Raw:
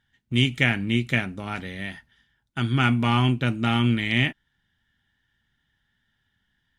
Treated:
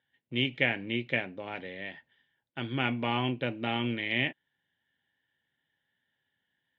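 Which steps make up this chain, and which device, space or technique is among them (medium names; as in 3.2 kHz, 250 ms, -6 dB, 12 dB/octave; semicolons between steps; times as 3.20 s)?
kitchen radio (cabinet simulation 200–3400 Hz, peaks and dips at 210 Hz -8 dB, 530 Hz +8 dB, 1.3 kHz -10 dB); trim -4.5 dB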